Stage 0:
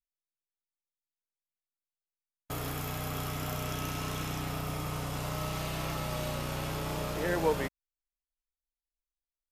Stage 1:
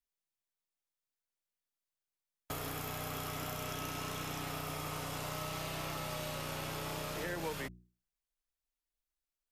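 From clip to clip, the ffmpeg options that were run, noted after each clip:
ffmpeg -i in.wav -filter_complex "[0:a]bandreject=frequency=60:width_type=h:width=6,bandreject=frequency=120:width_type=h:width=6,bandreject=frequency=180:width_type=h:width=6,bandreject=frequency=240:width_type=h:width=6,bandreject=frequency=300:width_type=h:width=6,bandreject=frequency=360:width_type=h:width=6,acrossover=split=250|1300[link_01][link_02][link_03];[link_01]acompressor=threshold=-46dB:ratio=4[link_04];[link_02]acompressor=threshold=-44dB:ratio=4[link_05];[link_03]acompressor=threshold=-43dB:ratio=4[link_06];[link_04][link_05][link_06]amix=inputs=3:normalize=0,volume=1dB" out.wav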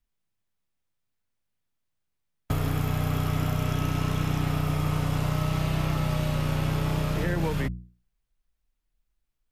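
ffmpeg -i in.wav -af "bass=frequency=250:gain=14,treble=frequency=4000:gain=-6,volume=7dB" out.wav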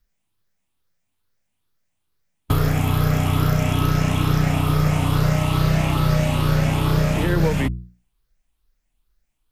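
ffmpeg -i in.wav -af "afftfilt=real='re*pow(10,7/40*sin(2*PI*(0.59*log(max(b,1)*sr/1024/100)/log(2)-(2.3)*(pts-256)/sr)))':imag='im*pow(10,7/40*sin(2*PI*(0.59*log(max(b,1)*sr/1024/100)/log(2)-(2.3)*(pts-256)/sr)))':win_size=1024:overlap=0.75,volume=7dB" out.wav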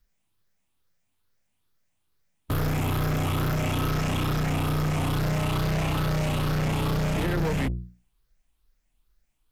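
ffmpeg -i in.wav -af "asoftclip=type=tanh:threshold=-22.5dB" out.wav

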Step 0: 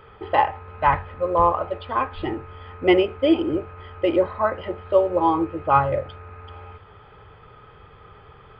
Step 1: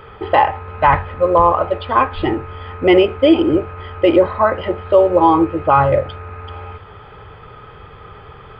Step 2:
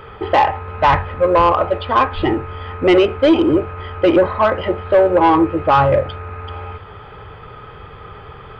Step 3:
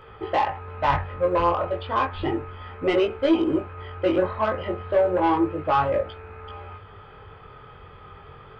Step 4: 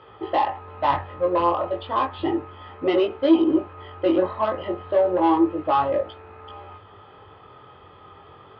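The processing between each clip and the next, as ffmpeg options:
ffmpeg -i in.wav -af "alimiter=level_in=10dB:limit=-1dB:release=50:level=0:latency=1,volume=-1dB" out.wav
ffmpeg -i in.wav -af "asoftclip=type=tanh:threshold=-7.5dB,volume=2dB" out.wav
ffmpeg -i in.wav -af "flanger=delay=18:depth=5.1:speed=0.32,volume=-6dB" out.wav
ffmpeg -i in.wav -af "highpass=130,equalizer=frequency=150:width_type=q:width=4:gain=-9,equalizer=frequency=220:width_type=q:width=4:gain=-4,equalizer=frequency=310:width_type=q:width=4:gain=4,equalizer=frequency=450:width_type=q:width=4:gain=-5,equalizer=frequency=1500:width_type=q:width=4:gain=-8,equalizer=frequency=2300:width_type=q:width=4:gain=-8,lowpass=frequency=4500:width=0.5412,lowpass=frequency=4500:width=1.3066,volume=2dB" out.wav

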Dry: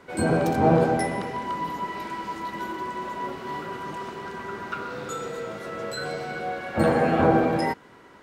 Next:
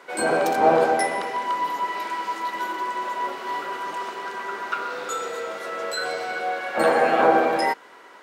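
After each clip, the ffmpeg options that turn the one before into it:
ffmpeg -i in.wav -af "highpass=510,volume=5.5dB" out.wav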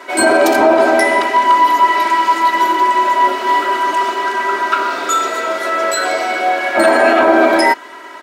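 ffmpeg -i in.wav -af "aecho=1:1:3.1:0.92,alimiter=level_in=11dB:limit=-1dB:release=50:level=0:latency=1,volume=-1dB" out.wav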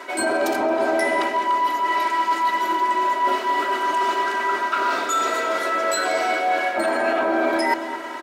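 ffmpeg -i in.wav -filter_complex "[0:a]areverse,acompressor=threshold=-19dB:ratio=6,areverse,asplit=2[link_01][link_02];[link_02]adelay=222,lowpass=frequency=920:poles=1,volume=-8dB,asplit=2[link_03][link_04];[link_04]adelay=222,lowpass=frequency=920:poles=1,volume=0.51,asplit=2[link_05][link_06];[link_06]adelay=222,lowpass=frequency=920:poles=1,volume=0.51,asplit=2[link_07][link_08];[link_08]adelay=222,lowpass=frequency=920:poles=1,volume=0.51,asplit=2[link_09][link_10];[link_10]adelay=222,lowpass=frequency=920:poles=1,volume=0.51,asplit=2[link_11][link_12];[link_12]adelay=222,lowpass=frequency=920:poles=1,volume=0.51[link_13];[link_01][link_03][link_05][link_07][link_09][link_11][link_13]amix=inputs=7:normalize=0" out.wav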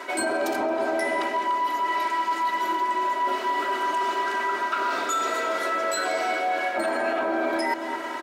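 ffmpeg -i in.wav -af "acompressor=threshold=-24dB:ratio=2.5" out.wav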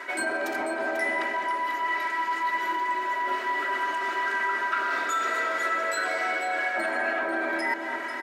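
ffmpeg -i in.wav -filter_complex "[0:a]equalizer=frequency=1800:width=1.8:gain=10,asplit=2[link_01][link_02];[link_02]aecho=0:1:492:0.316[link_03];[link_01][link_03]amix=inputs=2:normalize=0,volume=-6dB" out.wav

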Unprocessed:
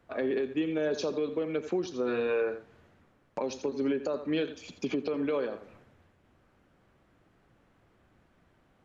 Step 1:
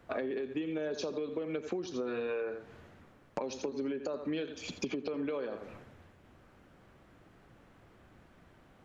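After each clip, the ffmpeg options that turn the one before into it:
ffmpeg -i in.wav -af "acompressor=threshold=-38dB:ratio=10,volume=5.5dB" out.wav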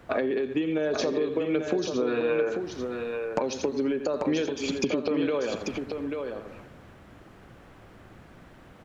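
ffmpeg -i in.wav -af "aecho=1:1:840:0.531,volume=8.5dB" out.wav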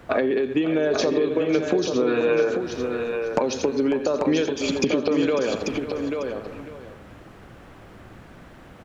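ffmpeg -i in.wav -af "aecho=1:1:548:0.224,volume=5dB" out.wav

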